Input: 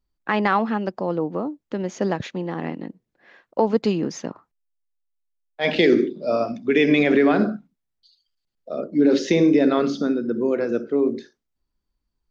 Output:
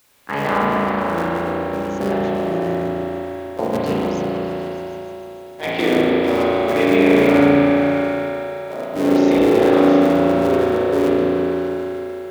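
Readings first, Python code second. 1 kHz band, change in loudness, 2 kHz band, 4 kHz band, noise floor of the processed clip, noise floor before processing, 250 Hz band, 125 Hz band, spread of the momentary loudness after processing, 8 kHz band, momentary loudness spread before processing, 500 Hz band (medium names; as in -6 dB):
+6.0 dB, +3.5 dB, +3.5 dB, +2.5 dB, -34 dBFS, -80 dBFS, +4.0 dB, +5.0 dB, 15 LU, no reading, 14 LU, +5.5 dB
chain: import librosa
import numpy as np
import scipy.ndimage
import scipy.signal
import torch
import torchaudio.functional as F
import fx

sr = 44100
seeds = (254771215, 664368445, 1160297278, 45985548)

p1 = fx.cycle_switch(x, sr, every=3, mode='muted')
p2 = scipy.signal.sosfilt(scipy.signal.butter(2, 72.0, 'highpass', fs=sr, output='sos'), p1)
p3 = fx.level_steps(p2, sr, step_db=12)
p4 = p2 + (p3 * 10.0 ** (-1.0 / 20.0))
p5 = fx.dmg_noise_colour(p4, sr, seeds[0], colour='white', level_db=-51.0)
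p6 = p5 + fx.echo_opening(p5, sr, ms=151, hz=750, octaves=1, feedback_pct=70, wet_db=-3, dry=0)
p7 = fx.rev_spring(p6, sr, rt60_s=3.3, pass_ms=(35,), chirp_ms=30, drr_db=-6.5)
y = p7 * 10.0 ** (-7.5 / 20.0)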